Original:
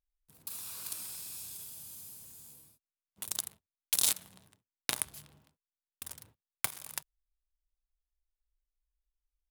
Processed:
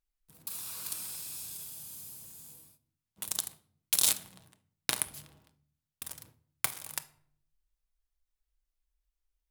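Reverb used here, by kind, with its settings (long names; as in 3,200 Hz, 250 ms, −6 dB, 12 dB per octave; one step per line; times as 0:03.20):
rectangular room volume 1,000 cubic metres, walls furnished, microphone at 0.62 metres
level +2 dB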